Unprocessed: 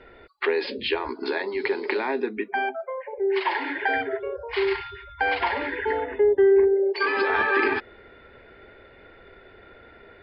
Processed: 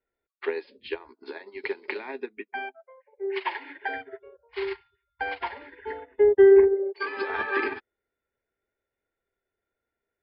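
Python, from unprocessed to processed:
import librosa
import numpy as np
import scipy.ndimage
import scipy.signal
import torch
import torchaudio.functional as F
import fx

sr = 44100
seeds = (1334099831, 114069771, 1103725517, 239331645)

y = fx.peak_eq(x, sr, hz=2500.0, db=5.0, octaves=0.91, at=(1.42, 3.77))
y = fx.upward_expand(y, sr, threshold_db=-42.0, expansion=2.5)
y = y * 10.0 ** (3.5 / 20.0)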